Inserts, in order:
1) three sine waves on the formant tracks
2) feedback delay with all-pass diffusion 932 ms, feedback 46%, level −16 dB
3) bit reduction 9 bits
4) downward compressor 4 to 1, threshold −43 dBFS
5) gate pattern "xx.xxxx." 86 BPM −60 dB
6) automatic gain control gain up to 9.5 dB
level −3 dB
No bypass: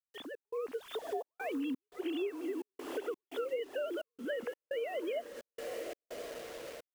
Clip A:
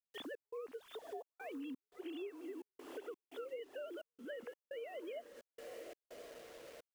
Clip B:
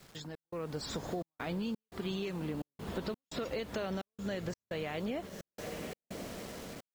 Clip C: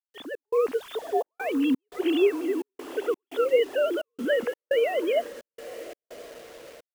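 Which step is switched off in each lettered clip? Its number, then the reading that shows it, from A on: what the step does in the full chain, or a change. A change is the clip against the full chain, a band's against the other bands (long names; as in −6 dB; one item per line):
6, 4 kHz band +1.5 dB
1, 500 Hz band −5.0 dB
4, average gain reduction 8.0 dB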